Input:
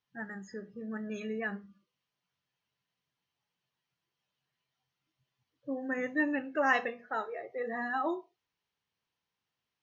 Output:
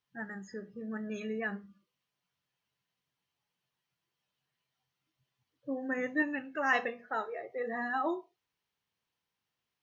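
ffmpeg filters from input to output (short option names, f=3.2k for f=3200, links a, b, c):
-filter_complex "[0:a]asettb=1/sr,asplit=3[a][b][c];[a]atrim=end=6.224[d];[b]atrim=start=6.22:end=6.73,asetpts=PTS-STARTPTS,afade=t=in:d=0.004:c=qsin,afade=t=out:st=0.506:d=0.004:c=qsin,equalizer=f=450:w=0.85:g=-7.5[e];[c]atrim=start=6.726[f];[d][e]acrossfade=d=0.004:c1=hsin:c2=qsin[g];[g][f]acrossfade=d=0.004:c1=qsin:c2=hsin"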